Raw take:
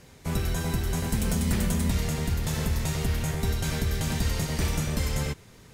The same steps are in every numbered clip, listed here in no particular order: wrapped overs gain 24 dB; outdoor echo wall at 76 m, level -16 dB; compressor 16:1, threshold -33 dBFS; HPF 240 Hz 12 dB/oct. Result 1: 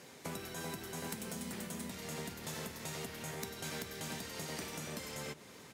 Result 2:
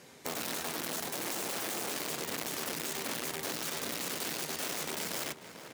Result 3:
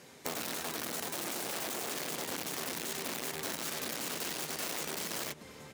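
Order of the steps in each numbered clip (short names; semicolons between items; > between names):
compressor > outdoor echo > wrapped overs > HPF; wrapped overs > outdoor echo > compressor > HPF; outdoor echo > wrapped overs > HPF > compressor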